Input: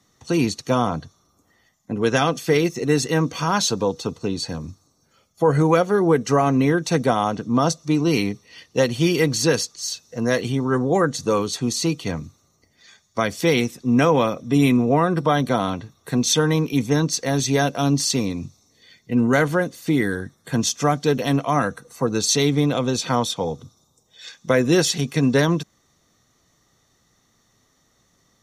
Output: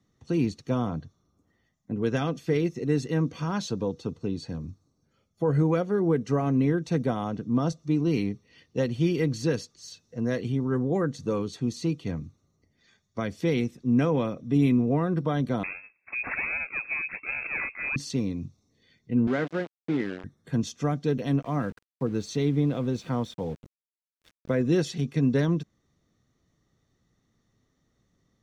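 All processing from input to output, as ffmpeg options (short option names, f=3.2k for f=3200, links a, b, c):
-filter_complex "[0:a]asettb=1/sr,asplit=3[a][b][c];[a]atrim=end=15.634[d];[b]atrim=start=15.63:end=17.96,asetpts=PTS-STARTPTS,afade=t=in:d=0.004:c=qsin,afade=t=out:st=2.326:d=0.004:c=qsin,acrusher=samples=32:mix=1:aa=0.000001:lfo=1:lforange=51.2:lforate=1.3,lowpass=f=2.3k:t=q:w=0.5098,lowpass=f=2.3k:t=q:w=0.6013,lowpass=f=2.3k:t=q:w=0.9,lowpass=f=2.3k:t=q:w=2.563,afreqshift=-2700[e];[c]atrim=start=17.956[f];[d][e]acrossfade=d=0.004:c1=hsin:c2=qsin[g];[g][f]acrossfade=d=0.004:c1=qsin:c2=hsin,asettb=1/sr,asplit=3[h][i][j];[h]atrim=end=19.274[k];[i]atrim=start=19.27:end=20.24,asetpts=PTS-STARTPTS,afade=t=in:d=0.004:c=qsin,afade=t=out:st=0.966:d=0.004:c=qsin,aeval=exprs='val(0)*gte(abs(val(0)),0.0841)':c=same,highpass=210,lowpass=4.4k[l];[j]atrim=start=20.236[m];[k][l]acrossfade=d=0.004:c1=hsin:c2=qsin[n];[n][m]acrossfade=d=0.004:c1=qsin:c2=hsin,asettb=1/sr,asplit=3[o][p][q];[o]atrim=end=21.424[r];[p]atrim=start=21.42:end=24.62,asetpts=PTS-STARTPTS,afade=t=in:d=0.004:c=qsin,afade=t=out:st=3.196:d=0.004:c=qsin,highshelf=f=3.1k:g=-5.5,aeval=exprs='val(0)*gte(abs(val(0)),0.0178)':c=same[s];[q]atrim=start=24.616[t];[r][s]acrossfade=d=0.004:c1=hsin:c2=qsin[u];[u][t]acrossfade=d=0.004:c1=qsin:c2=hsin,lowpass=f=1.2k:p=1,equalizer=f=880:t=o:w=1.9:g=-8.5,volume=-3dB"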